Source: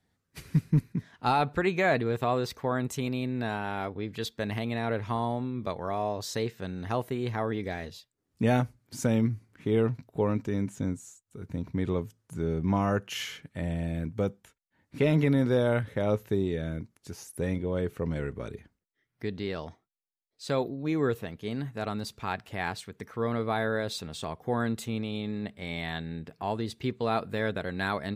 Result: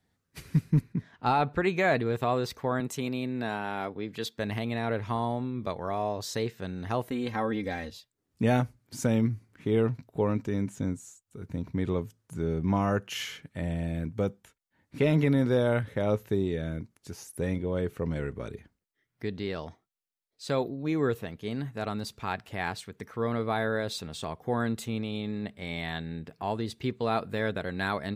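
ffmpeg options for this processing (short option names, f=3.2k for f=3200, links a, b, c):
-filter_complex "[0:a]asettb=1/sr,asplit=3[a][b][c];[a]atrim=end=0.814[d];[b]atrim=start=0.81:end=1.63,asetpts=PTS-STARTPTS,afade=t=in:d=0.004:c=qsin,afade=t=out:st=0.816:d=0.004:c=qsin,aemphasis=mode=reproduction:type=cd[e];[c]atrim=start=1.626[f];[d][e]acrossfade=d=0.004:c1=hsin:c2=qsin[g];[g][f]acrossfade=d=0.004:c1=qsin:c2=hsin,asettb=1/sr,asplit=3[h][i][j];[h]atrim=end=2.804[k];[i]atrim=start=2.8:end=4.38,asetpts=PTS-STARTPTS,afade=t=in:d=0.004:c=qsin,afade=t=out:st=1.576:d=0.004:c=qsin,highpass=140[l];[j]atrim=start=4.376[m];[k][l]acrossfade=d=0.004:c1=hsin:c2=qsin[n];[n][m]acrossfade=d=0.004:c1=qsin:c2=hsin,asettb=1/sr,asplit=3[o][p][q];[o]atrim=end=7.104[r];[p]atrim=start=7.1:end=7.92,asetpts=PTS-STARTPTS,afade=t=in:d=0.004:c=qsin,afade=t=out:st=0.816:d=0.004:c=qsin,aecho=1:1:3.8:0.65,atrim=end_sample=36162[s];[q]atrim=start=7.916[t];[r][s]acrossfade=d=0.004:c1=hsin:c2=qsin[u];[u][t]acrossfade=d=0.004:c1=qsin:c2=hsin"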